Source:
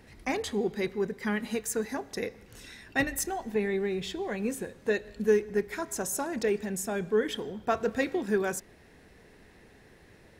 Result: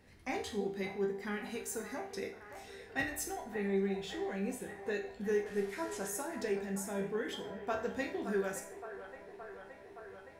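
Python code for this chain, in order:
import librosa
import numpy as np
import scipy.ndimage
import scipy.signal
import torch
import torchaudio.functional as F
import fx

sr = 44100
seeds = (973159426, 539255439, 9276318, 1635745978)

y = fx.delta_mod(x, sr, bps=64000, step_db=-39.5, at=(5.46, 6.07))
y = fx.resonator_bank(y, sr, root=36, chord='major', decay_s=0.43)
y = fx.echo_wet_bandpass(y, sr, ms=569, feedback_pct=77, hz=960.0, wet_db=-9.5)
y = y * librosa.db_to_amplitude(5.5)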